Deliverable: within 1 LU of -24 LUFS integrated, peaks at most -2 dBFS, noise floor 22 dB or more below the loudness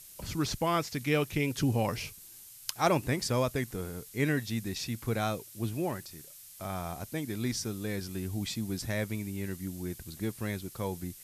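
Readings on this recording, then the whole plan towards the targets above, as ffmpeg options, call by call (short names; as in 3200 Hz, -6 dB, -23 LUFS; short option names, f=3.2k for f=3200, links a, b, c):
noise floor -51 dBFS; noise floor target -55 dBFS; loudness -33.0 LUFS; peak -10.0 dBFS; loudness target -24.0 LUFS
-> -af "afftdn=nr=6:nf=-51"
-af "volume=9dB,alimiter=limit=-2dB:level=0:latency=1"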